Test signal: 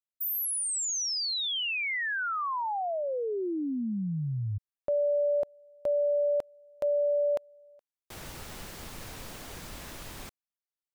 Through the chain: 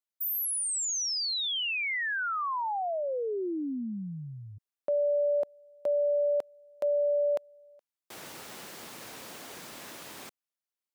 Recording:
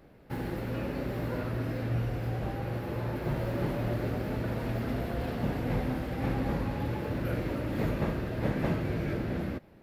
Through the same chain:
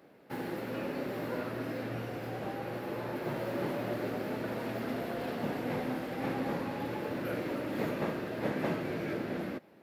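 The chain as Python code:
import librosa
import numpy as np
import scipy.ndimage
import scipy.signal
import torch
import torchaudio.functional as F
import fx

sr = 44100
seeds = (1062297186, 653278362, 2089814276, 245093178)

y = scipy.signal.sosfilt(scipy.signal.butter(2, 230.0, 'highpass', fs=sr, output='sos'), x)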